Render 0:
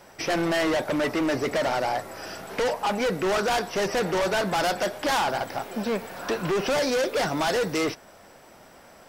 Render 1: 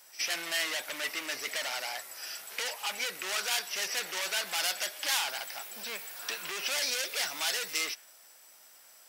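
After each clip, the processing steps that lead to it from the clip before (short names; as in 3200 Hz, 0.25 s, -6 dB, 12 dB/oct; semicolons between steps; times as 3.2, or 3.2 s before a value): differentiator; reverse echo 65 ms -17 dB; dynamic EQ 2400 Hz, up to +6 dB, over -54 dBFS, Q 1; gain +3 dB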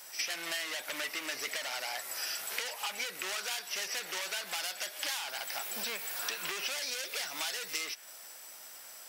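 compressor 6:1, threshold -40 dBFS, peak gain reduction 15.5 dB; gain +7 dB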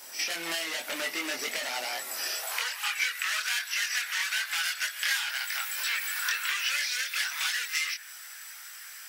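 crackle 520/s -55 dBFS; chorus voices 6, 0.69 Hz, delay 23 ms, depth 1.3 ms; high-pass sweep 230 Hz -> 1600 Hz, 2.18–2.73; gain +7 dB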